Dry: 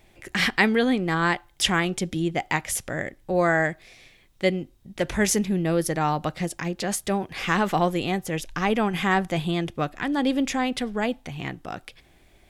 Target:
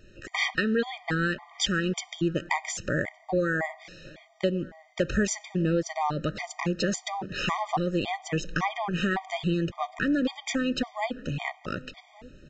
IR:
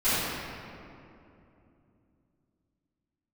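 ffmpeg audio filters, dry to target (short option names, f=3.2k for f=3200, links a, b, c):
-filter_complex "[0:a]acompressor=threshold=-26dB:ratio=6,asplit=2[a][b];[b]adelay=1166,volume=-21dB,highshelf=f=4k:g=-26.2[c];[a][c]amix=inputs=2:normalize=0,asplit=2[d][e];[1:a]atrim=start_sample=2205[f];[e][f]afir=irnorm=-1:irlink=0,volume=-36.5dB[g];[d][g]amix=inputs=2:normalize=0,aresample=16000,aresample=44100,afftfilt=real='re*gt(sin(2*PI*1.8*pts/sr)*(1-2*mod(floor(b*sr/1024/620),2)),0)':imag='im*gt(sin(2*PI*1.8*pts/sr)*(1-2*mod(floor(b*sr/1024/620),2)),0)':win_size=1024:overlap=0.75,volume=5dB"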